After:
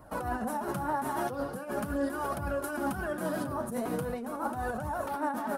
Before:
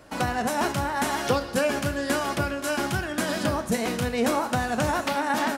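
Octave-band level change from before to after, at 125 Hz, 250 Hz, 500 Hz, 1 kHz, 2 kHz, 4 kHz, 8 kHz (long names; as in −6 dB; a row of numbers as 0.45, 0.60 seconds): −8.5, −6.5, −7.0, −6.0, −11.0, −19.5, −12.5 decibels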